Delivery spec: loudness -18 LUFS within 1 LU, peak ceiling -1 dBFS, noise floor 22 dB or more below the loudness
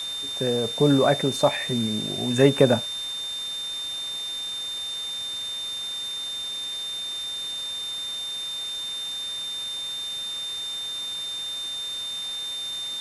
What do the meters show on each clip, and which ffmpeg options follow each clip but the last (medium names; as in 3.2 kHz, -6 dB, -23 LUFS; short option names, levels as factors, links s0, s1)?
steady tone 3.6 kHz; tone level -29 dBFS; noise floor -32 dBFS; noise floor target -48 dBFS; loudness -26.0 LUFS; peak level -3.0 dBFS; loudness target -18.0 LUFS
-> -af "bandreject=f=3600:w=30"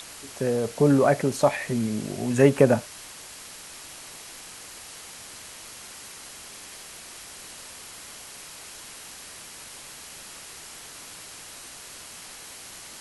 steady tone not found; noise floor -43 dBFS; noise floor target -45 dBFS
-> -af "afftdn=nr=6:nf=-43"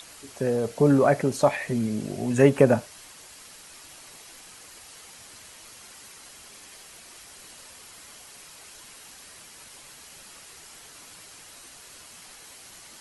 noise floor -48 dBFS; loudness -22.5 LUFS; peak level -3.5 dBFS; loudness target -18.0 LUFS
-> -af "volume=1.68,alimiter=limit=0.891:level=0:latency=1"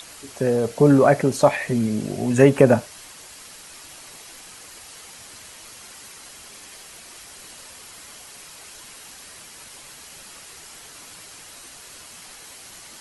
loudness -18.5 LUFS; peak level -1.0 dBFS; noise floor -43 dBFS